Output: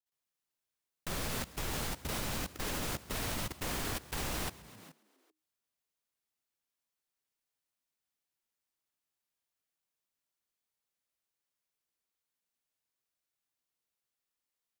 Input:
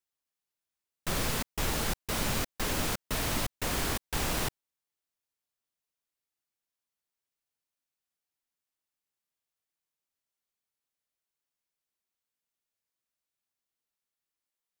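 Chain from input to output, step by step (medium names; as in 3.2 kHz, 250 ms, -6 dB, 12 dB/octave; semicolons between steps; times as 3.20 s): frequency-shifting echo 136 ms, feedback 49%, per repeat +52 Hz, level -8 dB; level held to a coarse grid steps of 18 dB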